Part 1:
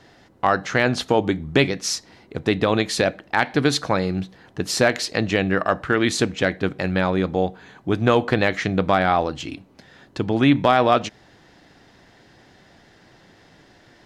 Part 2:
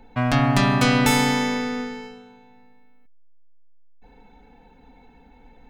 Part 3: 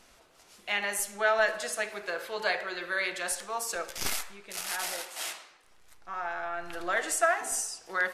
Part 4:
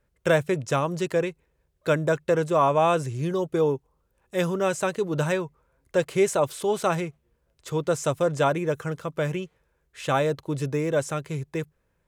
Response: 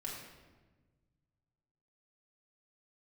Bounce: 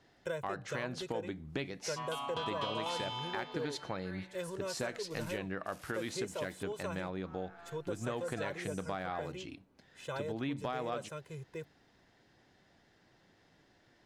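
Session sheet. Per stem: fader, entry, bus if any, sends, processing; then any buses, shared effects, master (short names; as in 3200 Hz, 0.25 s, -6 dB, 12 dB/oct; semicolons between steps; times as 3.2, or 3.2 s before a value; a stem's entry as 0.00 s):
-15.0 dB, 0.00 s, no send, dry
-3.0 dB, 1.80 s, no send, double band-pass 1800 Hz, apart 1.6 oct
-19.0 dB, 1.15 s, no send, dry
-16.5 dB, 0.00 s, no send, comb 2 ms, depth 92%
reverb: off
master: compressor 2.5:1, threshold -36 dBFS, peak gain reduction 8 dB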